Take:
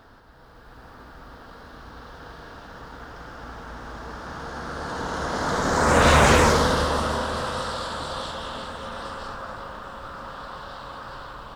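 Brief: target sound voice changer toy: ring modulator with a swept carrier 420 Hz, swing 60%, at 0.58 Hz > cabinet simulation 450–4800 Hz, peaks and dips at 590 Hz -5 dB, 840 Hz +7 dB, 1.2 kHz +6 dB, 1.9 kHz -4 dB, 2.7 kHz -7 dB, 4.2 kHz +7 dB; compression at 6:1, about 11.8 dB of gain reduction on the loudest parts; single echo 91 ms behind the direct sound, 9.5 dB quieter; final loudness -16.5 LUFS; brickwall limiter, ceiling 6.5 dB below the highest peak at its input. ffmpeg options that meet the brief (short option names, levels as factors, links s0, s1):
-af "acompressor=threshold=0.0562:ratio=6,alimiter=limit=0.0708:level=0:latency=1,aecho=1:1:91:0.335,aeval=exprs='val(0)*sin(2*PI*420*n/s+420*0.6/0.58*sin(2*PI*0.58*n/s))':c=same,highpass=450,equalizer=f=590:t=q:w=4:g=-5,equalizer=f=840:t=q:w=4:g=7,equalizer=f=1200:t=q:w=4:g=6,equalizer=f=1900:t=q:w=4:g=-4,equalizer=f=2700:t=q:w=4:g=-7,equalizer=f=4200:t=q:w=4:g=7,lowpass=f=4800:w=0.5412,lowpass=f=4800:w=1.3066,volume=8.91"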